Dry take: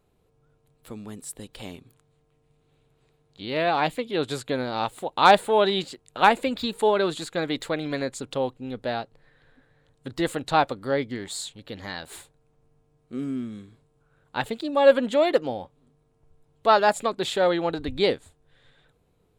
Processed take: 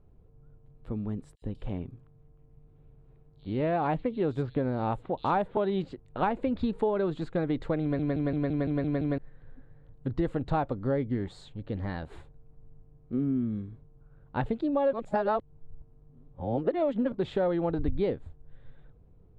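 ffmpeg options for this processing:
-filter_complex "[0:a]asettb=1/sr,asplit=3[s0][s1][s2];[s0]atrim=end=1.354[s3];[s1]atrim=start=1.35:end=5.57,asetpts=PTS-STARTPTS,afade=t=in:d=0.004:c=qsin,afade=t=out:st=4.216:d=0.004:c=qsin,acrossover=split=4300[s4][s5];[s4]adelay=70[s6];[s6][s5]amix=inputs=2:normalize=0,atrim=end_sample=186102[s7];[s2]atrim=start=5.566[s8];[s3][s7]acrossfade=d=0.004:c1=hsin:c2=qsin[s9];[s9][s8]acrossfade=d=0.004:c1=qsin:c2=hsin,asplit=11[s10][s11][s12][s13][s14][s15][s16][s17][s18][s19][s20];[s10]atrim=end=7.992[s21];[s11]atrim=start=7.818:end=7.992[s22];[s12]atrim=start=7.818:end=7.992[s23];[s13]atrim=start=7.818:end=7.992[s24];[s14]atrim=start=7.818:end=7.992[s25];[s15]atrim=start=7.818:end=7.992[s26];[s16]atrim=start=7.818:end=7.992[s27];[s17]atrim=start=7.818:end=7.992[s28];[s18]atrim=start=9.178:end=14.932[s29];[s19]atrim=start=14.928:end=17.122,asetpts=PTS-STARTPTS,areverse[s30];[s20]atrim=start=17.118[s31];[s21][s22]acrossfade=d=0.004:c1=hsin:c2=hsin[s32];[s32][s23]acrossfade=d=0.004:c1=hsin:c2=hsin[s33];[s33][s24]acrossfade=d=0.004:c1=hsin:c2=hsin[s34];[s34][s25]acrossfade=d=0.004:c1=hsin:c2=hsin[s35];[s35][s26]acrossfade=d=0.004:c1=hsin:c2=hsin[s36];[s36][s27]acrossfade=d=0.004:c1=hsin:c2=hsin[s37];[s37][s28]acrossfade=d=0.004:c1=hsin:c2=hsin[s38];[s38][s29]acrossfade=d=0.004:c1=hsin:c2=hsin[s39];[s39][s30]acrossfade=d=0.004:c1=hsin:c2=hsin[s40];[s40][s31]acrossfade=d=0.004:c1=hsin:c2=hsin,lowpass=f=1000:p=1,aemphasis=mode=reproduction:type=bsi,acompressor=threshold=0.0631:ratio=6"

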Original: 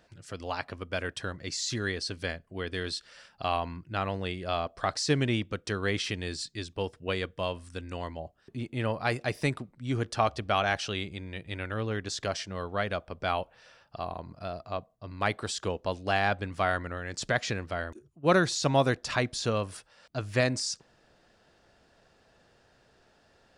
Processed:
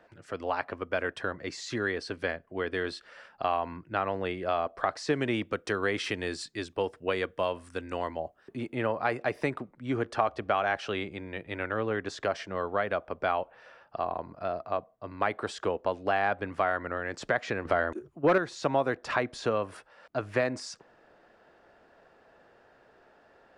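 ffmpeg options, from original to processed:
-filter_complex "[0:a]asettb=1/sr,asplit=3[s0][s1][s2];[s0]atrim=end=5.134[s3];[s1]atrim=start=5.13:end=8.75,asetpts=PTS-STARTPTS,afade=t=in:d=0.004:c=qsin,afade=t=out:st=3.616:d=0.004:c=qsin,highshelf=f=5400:g=10.5[s4];[s2]atrim=start=8.746[s5];[s3][s4]acrossfade=d=0.004:c1=hsin:c2=qsin[s6];[s6][s5]acrossfade=d=0.004:c1=qsin:c2=hsin,asettb=1/sr,asplit=3[s7][s8][s9];[s7]atrim=end=17.654[s10];[s8]atrim=start=17.65:end=18.38,asetpts=PTS-STARTPTS,afade=t=in:d=0.004:c=qsin,afade=t=out:st=0.726:d=0.004:c=qsin,aeval=exprs='0.282*sin(PI/2*1.78*val(0)/0.282)':c=same[s11];[s9]atrim=start=18.376[s12];[s10][s11]acrossfade=d=0.004:c1=hsin:c2=qsin[s13];[s13][s12]acrossfade=d=0.004:c1=qsin:c2=hsin,acrossover=split=260 2300:gain=0.251 1 0.158[s14][s15][s16];[s14][s15][s16]amix=inputs=3:normalize=0,acompressor=threshold=0.0282:ratio=2.5,volume=2"

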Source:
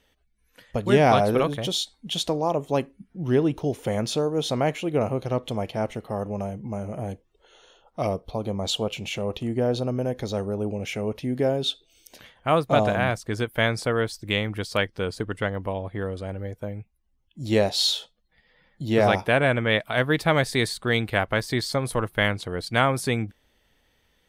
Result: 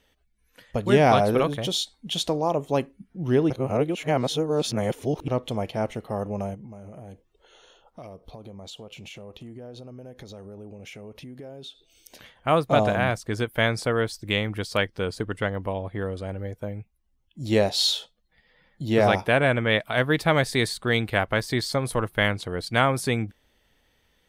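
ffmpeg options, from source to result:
-filter_complex "[0:a]asettb=1/sr,asplit=3[s0][s1][s2];[s0]atrim=end=6.544[s3];[s1]atrim=start=6.54:end=12.47,asetpts=PTS-STARTPTS,afade=t=in:d=0.004:c=qsin,afade=t=out:st=5.926:d=0.004:c=qsin,acompressor=threshold=0.0112:ratio=6:attack=3.2:release=140:knee=1:detection=peak[s4];[s2]atrim=start=12.466[s5];[s3][s4]acrossfade=d=0.004:c1=hsin:c2=qsin[s6];[s6][s5]acrossfade=d=0.004:c1=qsin:c2=hsin,asplit=3[s7][s8][s9];[s7]atrim=end=3.502[s10];[s8]atrim=start=3.498:end=5.282,asetpts=PTS-STARTPTS,areverse[s11];[s9]atrim=start=5.278[s12];[s10][s11]acrossfade=d=0.004:c1=hsin:c2=hsin[s13];[s13][s12]acrossfade=d=0.004:c1=hsin:c2=hsin"

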